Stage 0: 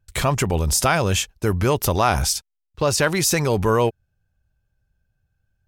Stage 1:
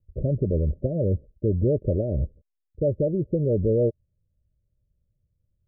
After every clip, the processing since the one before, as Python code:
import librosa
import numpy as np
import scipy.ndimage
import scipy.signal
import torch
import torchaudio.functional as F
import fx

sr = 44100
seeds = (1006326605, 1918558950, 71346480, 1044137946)

y = scipy.signal.sosfilt(scipy.signal.cheby1(8, 1.0, 610.0, 'lowpass', fs=sr, output='sos'), x)
y = y * librosa.db_to_amplitude(-1.5)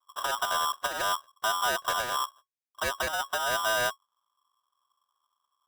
y = fx.lower_of_two(x, sr, delay_ms=2.2)
y = y * np.sign(np.sin(2.0 * np.pi * 1100.0 * np.arange(len(y)) / sr))
y = y * librosa.db_to_amplitude(-5.5)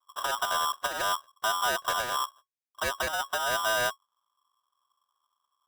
y = x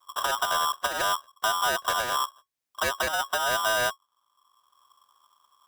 y = fx.band_squash(x, sr, depth_pct=40)
y = y * librosa.db_to_amplitude(2.5)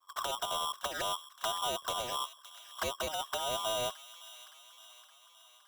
y = fx.env_flanger(x, sr, rest_ms=10.6, full_db=-24.0)
y = fx.echo_wet_highpass(y, sr, ms=567, feedback_pct=59, hz=1600.0, wet_db=-14)
y = y * librosa.db_to_amplitude(-4.5)